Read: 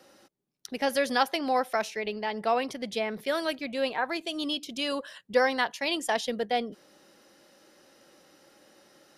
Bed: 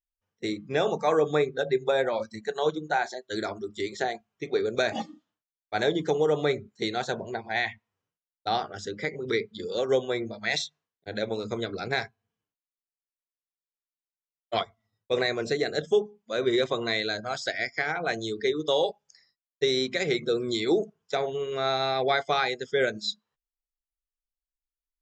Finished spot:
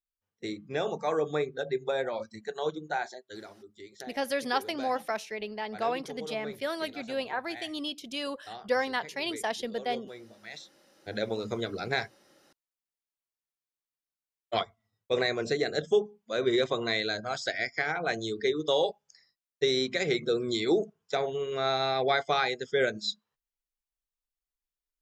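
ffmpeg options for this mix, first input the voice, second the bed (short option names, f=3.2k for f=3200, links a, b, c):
-filter_complex "[0:a]adelay=3350,volume=-4dB[a];[1:a]volume=9.5dB,afade=t=out:st=3.03:d=0.45:silence=0.281838,afade=t=in:st=10.63:d=0.48:silence=0.177828[b];[a][b]amix=inputs=2:normalize=0"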